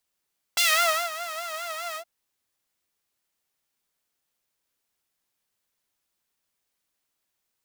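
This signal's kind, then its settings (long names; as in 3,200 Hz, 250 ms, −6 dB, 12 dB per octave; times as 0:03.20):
subtractive patch with vibrato E5, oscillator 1 saw, sub −23 dB, noise −12 dB, filter highpass, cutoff 440 Hz, Q 1.3, filter envelope 3 octaves, filter decay 0.27 s, attack 7.1 ms, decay 0.52 s, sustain −17 dB, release 0.08 s, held 1.39 s, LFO 4.9 Hz, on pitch 100 cents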